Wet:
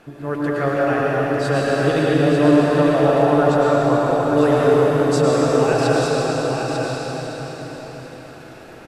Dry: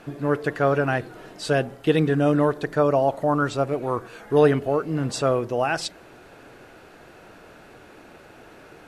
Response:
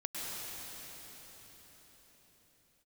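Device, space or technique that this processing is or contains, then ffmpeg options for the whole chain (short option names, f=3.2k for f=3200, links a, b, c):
cathedral: -filter_complex "[1:a]atrim=start_sample=2205[a];[0:a][a]afir=irnorm=-1:irlink=0,asettb=1/sr,asplit=3[b][c][d];[b]atrim=end=4.374[e];[c]atrim=start=4.37:end=5.22,asetpts=PTS-STARTPTS,afade=t=in:d=0.004:c=qsin,afade=t=out:st=0.846:d=0.004:c=qsin,highshelf=f=4.7k:g=5[f];[d]atrim=start=5.216[g];[e][f]acrossfade=d=0.004:c1=hsin:c2=qsin[h];[h][g]acrossfade=d=0.004:c1=qsin:c2=hsin,aecho=1:1:896:0.531,volume=1dB"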